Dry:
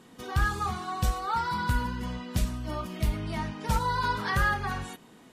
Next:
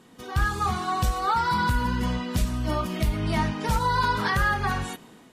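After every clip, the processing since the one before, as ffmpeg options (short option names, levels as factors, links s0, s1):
-af "dynaudnorm=f=260:g=5:m=2.51,alimiter=limit=0.188:level=0:latency=1:release=179"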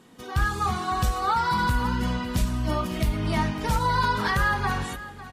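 -af "aecho=1:1:553:0.168"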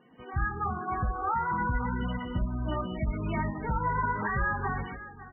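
-af "volume=0.562" -ar 22050 -c:a libmp3lame -b:a 8k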